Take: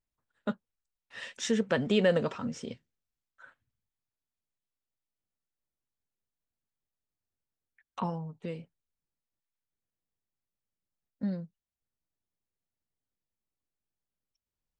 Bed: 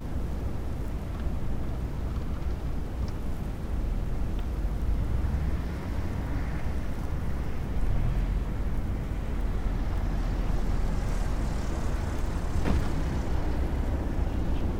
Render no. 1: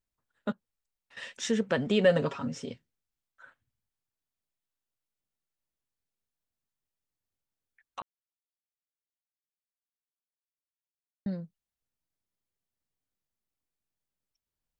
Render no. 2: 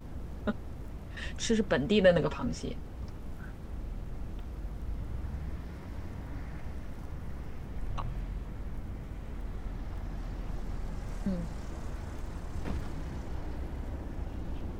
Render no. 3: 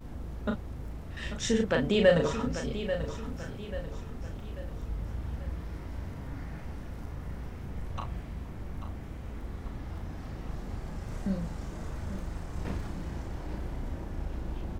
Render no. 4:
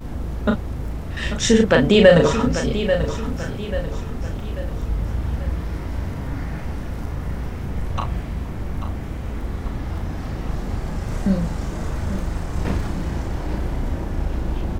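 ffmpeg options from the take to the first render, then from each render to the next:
-filter_complex "[0:a]asettb=1/sr,asplit=3[s0][s1][s2];[s0]atrim=end=0.524[s3];[s1]atrim=start=0.52:end=1.17,asetpts=PTS-STARTPTS,afade=t=in:d=0.004:c=qsin,afade=t=out:st=0.646:d=0.004:c=qsin,acompressor=threshold=0.002:ratio=6:attack=3.2:release=140:knee=1:detection=peak[s4];[s2]atrim=start=1.166[s5];[s3][s4]acrossfade=d=0.004:c1=hsin:c2=qsin[s6];[s6][s5]acrossfade=d=0.004:c1=qsin:c2=hsin,asettb=1/sr,asplit=3[s7][s8][s9];[s7]atrim=end=2.044[s10];[s8]atrim=start=2.04:end=2.71,asetpts=PTS-STARTPTS,afade=t=in:d=0.004:c=qsin,afade=t=out:st=0.666:d=0.004:c=qsin,aecho=1:1:7.2:0.65,atrim=end_sample=29547[s11];[s9]atrim=start=2.706[s12];[s10][s11]acrossfade=d=0.004:c1=hsin:c2=qsin[s13];[s13][s12]acrossfade=d=0.004:c1=qsin:c2=hsin,asplit=3[s14][s15][s16];[s14]atrim=end=8.02,asetpts=PTS-STARTPTS,afade=t=out:st=8.016:d=0.004:c=hsin[s17];[s15]atrim=start=8.02:end=11.26,asetpts=PTS-STARTPTS,volume=0[s18];[s16]atrim=start=11.26,asetpts=PTS-STARTPTS,afade=t=in:d=0.004:c=hsin[s19];[s17][s18][s19]concat=n=3:v=0:a=1"
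-filter_complex "[1:a]volume=0.335[s0];[0:a][s0]amix=inputs=2:normalize=0"
-filter_complex "[0:a]asplit=2[s0][s1];[s1]adelay=36,volume=0.596[s2];[s0][s2]amix=inputs=2:normalize=0,aecho=1:1:839|1678|2517|3356:0.299|0.125|0.0527|0.0221"
-af "volume=3.98,alimiter=limit=0.891:level=0:latency=1"

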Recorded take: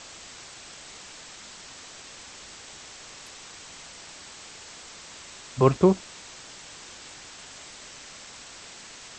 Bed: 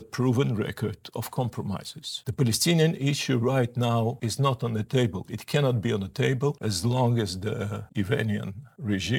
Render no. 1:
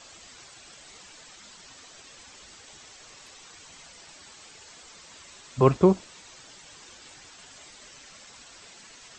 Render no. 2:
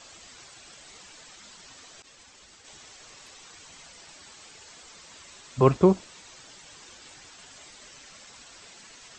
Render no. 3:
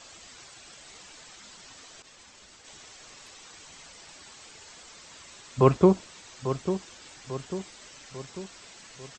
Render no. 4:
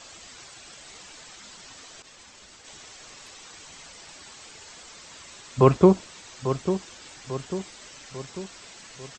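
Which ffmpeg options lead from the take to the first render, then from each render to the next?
-af "afftdn=nr=8:nf=-45"
-filter_complex "[0:a]asettb=1/sr,asplit=3[s0][s1][s2];[s0]atrim=end=2.024[s3];[s1]atrim=start=2.02:end=2.65,asetpts=PTS-STARTPTS,afade=t=in:d=0.004:c=qsin,afade=t=out:st=0.626:d=0.004:c=qsin,agate=range=0.0224:threshold=0.00501:ratio=3:release=100:detection=peak[s4];[s2]atrim=start=2.646[s5];[s3][s4]acrossfade=d=0.004:c1=hsin:c2=qsin[s6];[s6][s5]acrossfade=d=0.004:c1=qsin:c2=hsin"
-filter_complex "[0:a]asplit=2[s0][s1];[s1]adelay=845,lowpass=f=2000:p=1,volume=0.316,asplit=2[s2][s3];[s3]adelay=845,lowpass=f=2000:p=1,volume=0.53,asplit=2[s4][s5];[s5]adelay=845,lowpass=f=2000:p=1,volume=0.53,asplit=2[s6][s7];[s7]adelay=845,lowpass=f=2000:p=1,volume=0.53,asplit=2[s8][s9];[s9]adelay=845,lowpass=f=2000:p=1,volume=0.53,asplit=2[s10][s11];[s11]adelay=845,lowpass=f=2000:p=1,volume=0.53[s12];[s0][s2][s4][s6][s8][s10][s12]amix=inputs=7:normalize=0"
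-af "volume=1.41,alimiter=limit=0.708:level=0:latency=1"

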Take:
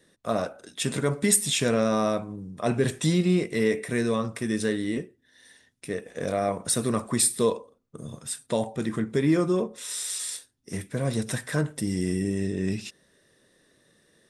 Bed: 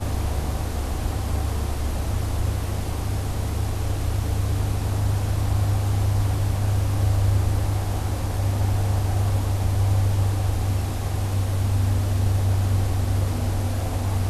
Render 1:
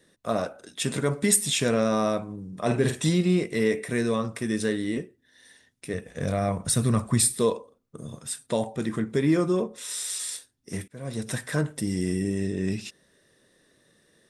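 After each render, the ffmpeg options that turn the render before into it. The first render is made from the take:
-filter_complex "[0:a]asettb=1/sr,asplit=3[s0][s1][s2];[s0]atrim=end=2.484[s3];[s1]atrim=start=2.48:end=3.09,asetpts=PTS-STARTPTS,afade=t=in:d=0.004:c=qsin,afade=t=out:st=0.606:d=0.004:c=qsin,asplit=2[s4][s5];[s5]adelay=48,volume=0.501[s6];[s4][s6]amix=inputs=2:normalize=0,atrim=end_sample=26901[s7];[s2]atrim=start=3.086[s8];[s3][s7]acrossfade=d=0.004:c1=hsin:c2=qsin[s9];[s9][s8]acrossfade=d=0.004:c1=qsin:c2=hsin,asplit=3[s10][s11][s12];[s10]afade=t=out:st=5.93:d=0.02[s13];[s11]asubboost=boost=4.5:cutoff=160,afade=t=in:st=5.93:d=0.02,afade=t=out:st=7.32:d=0.02[s14];[s12]afade=t=in:st=7.32:d=0.02[s15];[s13][s14][s15]amix=inputs=3:normalize=0,asplit=2[s16][s17];[s16]atrim=end=10.88,asetpts=PTS-STARTPTS,afade=t=out:st=10.876:d=0.004:c=hsin:silence=0.0749894[s18];[s17]atrim=start=10.88,asetpts=PTS-STARTPTS,afade=t=in:d=0.5:silence=0.0749894[s19];[s18][s19]concat=n=2:v=0:a=1"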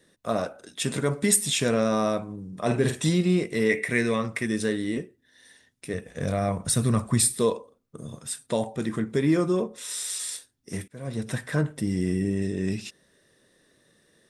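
-filter_complex "[0:a]asettb=1/sr,asplit=3[s0][s1][s2];[s0]atrim=end=3.694[s3];[s1]atrim=start=3.69:end=4.46,asetpts=PTS-STARTPTS,afade=t=in:d=0.004:c=qsin,afade=t=out:st=0.766:d=0.004:c=qsin,equalizer=f=2100:w=2.6:g=12[s4];[s2]atrim=start=4.456[s5];[s3][s4]acrossfade=d=0.004:c1=hsin:c2=qsin[s6];[s6][s5]acrossfade=d=0.004:c1=qsin:c2=hsin,asettb=1/sr,asplit=3[s7][s8][s9];[s7]atrim=end=11.074[s10];[s8]atrim=start=11.07:end=12.42,asetpts=PTS-STARTPTS,afade=t=in:d=0.004:c=qsin,afade=t=out:st=1.346:d=0.004:c=qsin,bass=f=250:g=2,treble=f=4000:g=-6[s11];[s9]atrim=start=12.416[s12];[s10][s11]acrossfade=d=0.004:c1=hsin:c2=qsin[s13];[s13][s12]acrossfade=d=0.004:c1=qsin:c2=hsin"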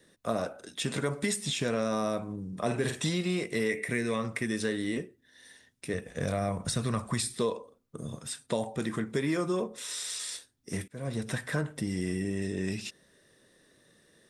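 -filter_complex "[0:a]acrossover=split=550|6900[s0][s1][s2];[s0]acompressor=threshold=0.0316:ratio=4[s3];[s1]acompressor=threshold=0.0251:ratio=4[s4];[s2]acompressor=threshold=0.00501:ratio=4[s5];[s3][s4][s5]amix=inputs=3:normalize=0"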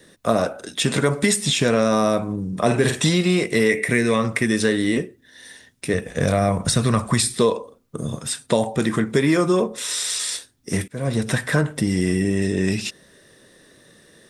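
-af "volume=3.76"

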